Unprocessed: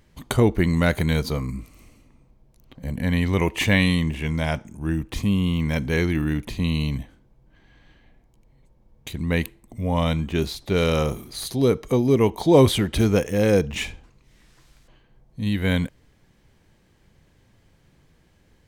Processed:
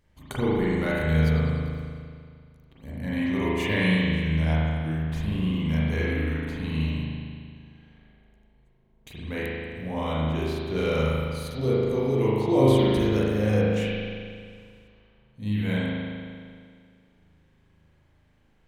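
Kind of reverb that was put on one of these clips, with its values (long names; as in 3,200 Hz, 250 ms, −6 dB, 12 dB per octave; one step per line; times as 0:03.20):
spring reverb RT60 2.1 s, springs 38 ms, chirp 65 ms, DRR −8 dB
level −12 dB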